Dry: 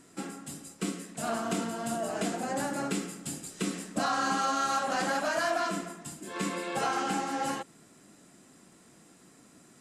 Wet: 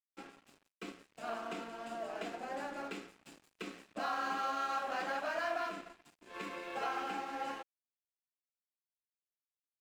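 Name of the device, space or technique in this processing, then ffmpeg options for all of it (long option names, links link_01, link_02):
pocket radio on a weak battery: -af "highpass=350,lowpass=3500,aeval=exprs='sgn(val(0))*max(abs(val(0))-0.00376,0)':channel_layout=same,equalizer=frequency=2500:width_type=o:width=0.23:gain=4.5,volume=-6dB"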